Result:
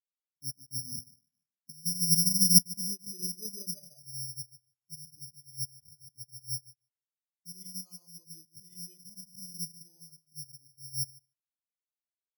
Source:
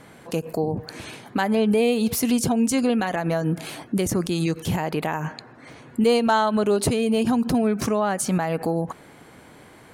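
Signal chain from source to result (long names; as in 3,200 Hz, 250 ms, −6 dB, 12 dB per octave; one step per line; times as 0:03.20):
ceiling on every frequency bin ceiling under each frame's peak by 12 dB
parametric band 150 Hz +10 dB 1.2 octaves
reversed playback
downward compressor 16 to 1, threshold −24 dBFS, peak gain reduction 13.5 dB
reversed playback
tape wow and flutter 21 cents
change of speed 0.803×
low-pass filter sweep 260 Hz → 3,100 Hz, 0:02.50–0:06.08
on a send: repeating echo 150 ms, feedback 43%, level −5 dB
on the sum: bad sample-rate conversion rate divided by 8×, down none, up zero stuff
every bin expanded away from the loudest bin 4 to 1
level −7.5 dB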